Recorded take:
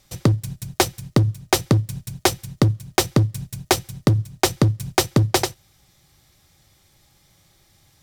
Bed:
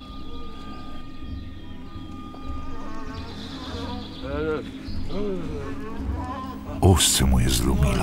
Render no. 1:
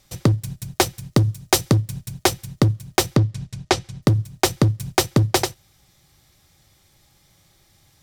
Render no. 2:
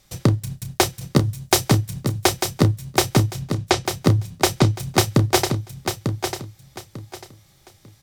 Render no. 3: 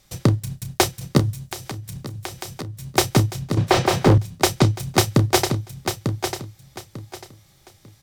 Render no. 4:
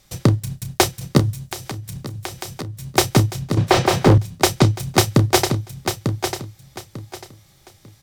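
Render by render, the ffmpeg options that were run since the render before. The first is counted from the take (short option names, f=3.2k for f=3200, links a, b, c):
-filter_complex "[0:a]asettb=1/sr,asplit=3[a][b][c];[a]atrim=end=1.134[d];[b]atrim=start=1.13:end=1.76,asetpts=PTS-STARTPTS,afade=t=in:d=0.004:c=qsin,afade=t=out:st=0.626:d=0.004:c=qsin,bass=f=250:g=0,treble=f=4k:g=4[e];[c]atrim=start=1.756[f];[d][e]acrossfade=d=0.004:c1=hsin:c2=qsin[g];[g][f]acrossfade=d=0.004:c1=qsin:c2=hsin,asplit=3[h][i][j];[h]afade=t=out:st=3.16:d=0.02[k];[i]lowpass=6.1k,afade=t=in:st=3.16:d=0.02,afade=t=out:st=4.01:d=0.02[l];[j]afade=t=in:st=4.01:d=0.02[m];[k][l][m]amix=inputs=3:normalize=0"
-filter_complex "[0:a]asplit=2[a][b];[b]adelay=31,volume=-10.5dB[c];[a][c]amix=inputs=2:normalize=0,aecho=1:1:896|1792|2688:0.447|0.112|0.0279"
-filter_complex "[0:a]asettb=1/sr,asplit=3[a][b][c];[a]atrim=end=1.404[d];[b]atrim=start=1.4:end=2.91,asetpts=PTS-STARTPTS,afade=t=in:d=0.004:c=qsin,afade=t=out:st=1.506:d=0.004:c=qsin,acompressor=threshold=-29dB:ratio=8:attack=3.2:release=140:knee=1:detection=peak[e];[c]atrim=start=2.906[f];[d][e]acrossfade=d=0.004:c1=hsin:c2=qsin[g];[g][f]acrossfade=d=0.004:c1=qsin:c2=hsin,asettb=1/sr,asplit=3[h][i][j];[h]atrim=end=3.574[k];[i]atrim=start=3.57:end=4.18,asetpts=PTS-STARTPTS,afade=t=in:d=0.004:c=qsin,afade=t=out:st=0.606:d=0.004:c=qsin,asplit=2[l][m];[m]highpass=f=720:p=1,volume=33dB,asoftclip=type=tanh:threshold=-4.5dB[n];[l][n]amix=inputs=2:normalize=0,lowpass=f=1.1k:p=1,volume=-6dB[o];[j]atrim=start=4.176[p];[k][o]acrossfade=d=0.004:c1=hsin:c2=qsin[q];[q][p]acrossfade=d=0.004:c1=qsin:c2=hsin"
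-af "volume=2dB"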